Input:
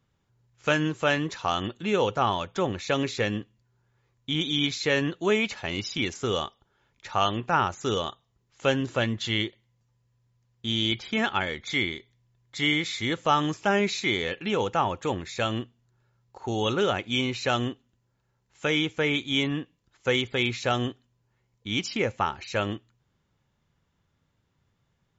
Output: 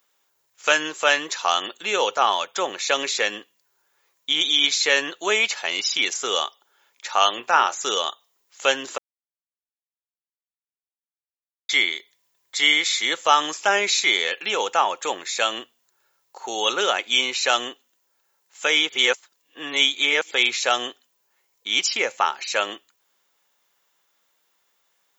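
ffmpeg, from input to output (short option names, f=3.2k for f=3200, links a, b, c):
-filter_complex "[0:a]asettb=1/sr,asplit=3[a][b][c];[a]atrim=end=7.344[d];[b]atrim=start=7.34:end=7.83,asetpts=PTS-STARTPTS,afade=t=in:d=0.004:c=qsin,afade=t=out:st=0.486:d=0.004:c=qsin,asplit=2[e][f];[f]adelay=25,volume=-12dB[g];[e][g]amix=inputs=2:normalize=0,atrim=end_sample=21609[h];[c]atrim=start=7.826[i];[d][h]acrossfade=d=0.004:c1=hsin:c2=qsin[j];[j][i]acrossfade=d=0.004:c1=qsin:c2=hsin,asplit=5[k][l][m][n][o];[k]atrim=end=8.98,asetpts=PTS-STARTPTS,afade=t=out:st=8.976:d=0.004:c=hsin[p];[l]atrim=start=8.98:end=11.69,asetpts=PTS-STARTPTS,volume=0[q];[m]atrim=start=11.69:end=18.892,asetpts=PTS-STARTPTS,afade=t=in:d=0.004:c=hsin[r];[n]atrim=start=18.888:end=20.312,asetpts=PTS-STARTPTS,areverse[s];[o]atrim=start=20.308[t];[p][q][r]concat=n=3:v=0:a=1[u];[u][s]acrossfade=d=0.004:c1=hsin:c2=hsin[v];[v][t]acrossfade=d=0.004:c1=hsin:c2=hsin,highpass=510,aemphasis=mode=production:type=bsi,volume=6dB"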